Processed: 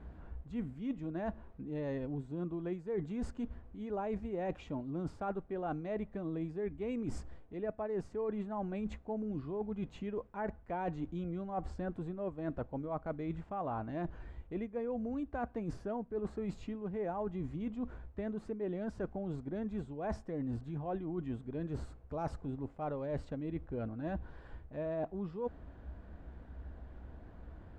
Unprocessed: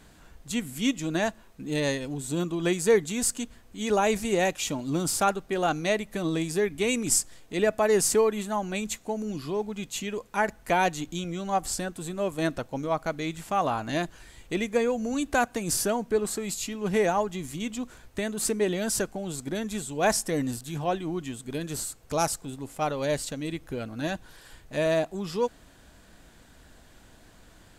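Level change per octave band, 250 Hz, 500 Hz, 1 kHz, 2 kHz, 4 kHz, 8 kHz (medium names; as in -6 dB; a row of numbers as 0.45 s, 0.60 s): -8.0 dB, -12.0 dB, -13.5 dB, -20.0 dB, under -25 dB, under -35 dB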